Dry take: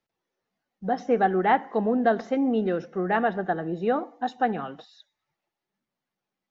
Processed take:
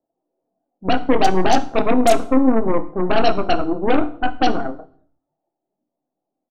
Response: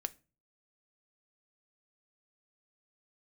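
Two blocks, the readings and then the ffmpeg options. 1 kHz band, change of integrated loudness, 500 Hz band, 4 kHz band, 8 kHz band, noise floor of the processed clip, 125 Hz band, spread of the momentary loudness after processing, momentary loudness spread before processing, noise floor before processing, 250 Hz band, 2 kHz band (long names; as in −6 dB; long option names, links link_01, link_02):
+5.5 dB, +6.5 dB, +6.5 dB, +17.0 dB, can't be measured, −82 dBFS, +6.0 dB, 7 LU, 7 LU, below −85 dBFS, +7.5 dB, +4.5 dB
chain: -filter_complex "[0:a]asplit=2[link_01][link_02];[link_02]adelay=27,volume=-7dB[link_03];[link_01][link_03]amix=inputs=2:normalize=0,acrossover=split=2300[link_04][link_05];[link_04]lowpass=frequency=680:width_type=q:width=4.9[link_06];[link_05]acrusher=bits=3:mix=0:aa=0.000001[link_07];[link_06][link_07]amix=inputs=2:normalize=0,aeval=exprs='0.708*(cos(1*acos(clip(val(0)/0.708,-1,1)))-cos(1*PI/2))+0.178*(cos(8*acos(clip(val(0)/0.708,-1,1)))-cos(8*PI/2))':channel_layout=same,asplit=2[link_08][link_09];[link_09]acompressor=threshold=-20dB:ratio=6,volume=-1dB[link_10];[link_08][link_10]amix=inputs=2:normalize=0,equalizer=frequency=300:width=2.6:gain=14[link_11];[1:a]atrim=start_sample=2205,afade=type=out:start_time=0.34:duration=0.01,atrim=end_sample=15435,asetrate=24696,aresample=44100[link_12];[link_11][link_12]afir=irnorm=-1:irlink=0,volume=-10dB"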